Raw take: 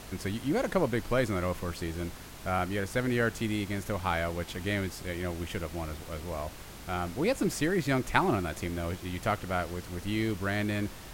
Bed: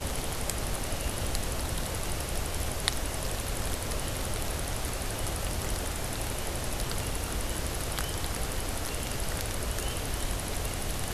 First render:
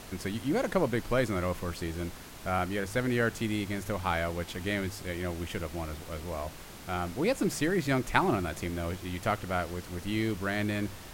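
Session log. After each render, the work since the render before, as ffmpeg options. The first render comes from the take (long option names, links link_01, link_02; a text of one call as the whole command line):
ffmpeg -i in.wav -af "bandreject=frequency=50:width_type=h:width=4,bandreject=frequency=100:width_type=h:width=4,bandreject=frequency=150:width_type=h:width=4" out.wav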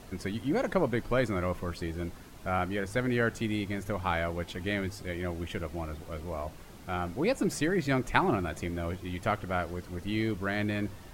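ffmpeg -i in.wav -af "afftdn=noise_reduction=8:noise_floor=-46" out.wav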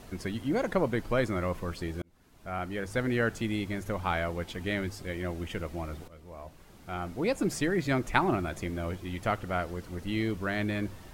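ffmpeg -i in.wav -filter_complex "[0:a]asplit=3[link_01][link_02][link_03];[link_01]atrim=end=2.02,asetpts=PTS-STARTPTS,afade=type=out:start_time=2.016:duration=0.004:curve=hsin[link_04];[link_02]atrim=start=2.02:end=6.08,asetpts=PTS-STARTPTS,afade=type=in:duration=0.98,afade=type=out:start_time=4.056:duration=0.004:curve=hsin:silence=0.177828[link_05];[link_03]atrim=start=6.08,asetpts=PTS-STARTPTS,afade=type=in:duration=1.34:silence=0.177828[link_06];[link_04][link_05][link_06]concat=n=3:v=0:a=1" out.wav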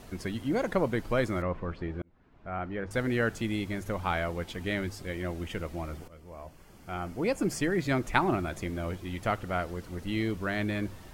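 ffmpeg -i in.wav -filter_complex "[0:a]asettb=1/sr,asplit=3[link_01][link_02][link_03];[link_01]atrim=end=1.424[link_04];[link_02]atrim=start=1.42:end=2.91,asetpts=PTS-STARTPTS,afade=type=in:duration=0.004:curve=qsin,afade=type=out:start_time=1.486:duration=0.004:curve=qsin,lowpass=2100[link_05];[link_03]atrim=start=2.906[link_06];[link_04][link_05]acrossfade=duration=0.004:curve1=hsin:curve2=qsin[link_07];[link_07][link_06]acrossfade=duration=0.004:curve1=qsin:curve2=hsin,asettb=1/sr,asplit=3[link_08][link_09][link_10];[link_08]atrim=end=5.924[link_11];[link_09]atrim=start=5.92:end=7.72,asetpts=PTS-STARTPTS,afade=type=in:duration=0.004:curve=qsin,afade=type=out:start_time=1.796:duration=0.004:curve=qsin,bandreject=frequency=3800:width=6.7[link_12];[link_10]atrim=start=7.716[link_13];[link_11][link_12]acrossfade=duration=0.004:curve1=hsin:curve2=qsin[link_14];[link_14][link_13]acrossfade=duration=0.004:curve1=qsin:curve2=hsin" out.wav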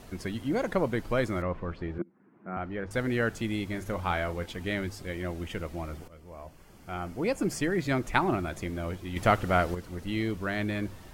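ffmpeg -i in.wav -filter_complex "[0:a]asettb=1/sr,asplit=3[link_01][link_02][link_03];[link_01]atrim=end=1.984[link_04];[link_02]atrim=start=1.98:end=2.57,asetpts=PTS-STARTPTS,afade=type=in:duration=0.004:curve=qsin,afade=type=out:start_time=0.586:duration=0.004:curve=qsin,highpass=frequency=150:width=0.5412,highpass=frequency=150:width=1.3066,equalizer=frequency=200:width_type=q:width=4:gain=9,equalizer=frequency=340:width_type=q:width=4:gain=8,equalizer=frequency=650:width_type=q:width=4:gain=-5,lowpass=frequency=2100:width=0.5412,lowpass=frequency=2100:width=1.3066[link_05];[link_03]atrim=start=2.566[link_06];[link_04][link_05]acrossfade=duration=0.004:curve1=hsin:curve2=qsin[link_07];[link_07][link_06]acrossfade=duration=0.004:curve1=qsin:curve2=hsin,asettb=1/sr,asplit=3[link_08][link_09][link_10];[link_08]atrim=end=3.714[link_11];[link_09]atrim=start=3.71:end=4.46,asetpts=PTS-STARTPTS,afade=type=in:duration=0.004:curve=qsin,afade=type=out:start_time=0.746:duration=0.004:curve=qsin,asplit=2[link_12][link_13];[link_13]adelay=33,volume=-11dB[link_14];[link_12][link_14]amix=inputs=2:normalize=0,atrim=end_sample=33075[link_15];[link_10]atrim=start=4.456[link_16];[link_11][link_15]acrossfade=duration=0.004:curve1=hsin:curve2=qsin[link_17];[link_17][link_16]acrossfade=duration=0.004:curve1=qsin:curve2=hsin,asettb=1/sr,asplit=3[link_18][link_19][link_20];[link_18]atrim=end=9.164[link_21];[link_19]atrim=start=9.16:end=9.75,asetpts=PTS-STARTPTS,afade=type=in:duration=0.004:curve=qsin,afade=type=out:start_time=0.586:duration=0.004:curve=qsin,acontrast=68[link_22];[link_20]atrim=start=9.746[link_23];[link_21][link_22]acrossfade=duration=0.004:curve1=hsin:curve2=qsin[link_24];[link_24][link_23]acrossfade=duration=0.004:curve1=qsin:curve2=hsin" out.wav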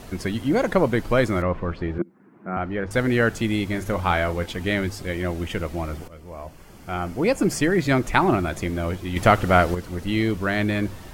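ffmpeg -i in.wav -af "volume=8dB,alimiter=limit=-3dB:level=0:latency=1" out.wav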